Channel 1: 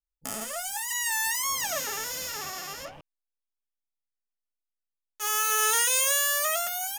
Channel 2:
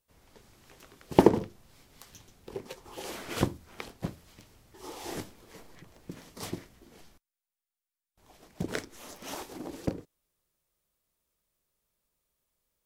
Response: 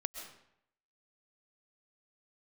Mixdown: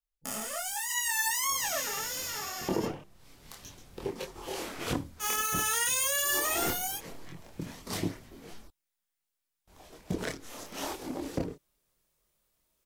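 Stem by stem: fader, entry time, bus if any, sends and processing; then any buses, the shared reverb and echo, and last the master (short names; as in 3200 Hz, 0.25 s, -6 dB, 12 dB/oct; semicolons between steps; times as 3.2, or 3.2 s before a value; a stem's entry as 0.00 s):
+1.5 dB, 0.00 s, no send, dry
-4.0 dB, 1.50 s, no send, AGC gain up to 12 dB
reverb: off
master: chorus voices 4, 0.44 Hz, delay 25 ms, depth 3.9 ms; limiter -18.5 dBFS, peak gain reduction 8.5 dB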